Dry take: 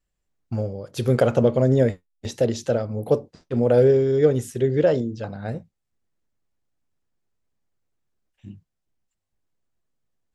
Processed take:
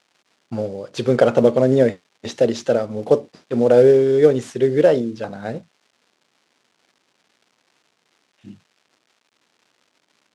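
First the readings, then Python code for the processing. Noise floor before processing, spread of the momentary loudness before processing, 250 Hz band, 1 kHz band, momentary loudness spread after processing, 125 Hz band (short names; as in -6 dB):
-80 dBFS, 15 LU, +3.5 dB, +5.0 dB, 17 LU, -3.5 dB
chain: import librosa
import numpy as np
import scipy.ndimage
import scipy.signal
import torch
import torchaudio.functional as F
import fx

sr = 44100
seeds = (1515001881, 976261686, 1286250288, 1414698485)

y = fx.cvsd(x, sr, bps=64000)
y = fx.dmg_crackle(y, sr, seeds[0], per_s=380.0, level_db=-50.0)
y = fx.bandpass_edges(y, sr, low_hz=200.0, high_hz=5900.0)
y = y * 10.0 ** (5.0 / 20.0)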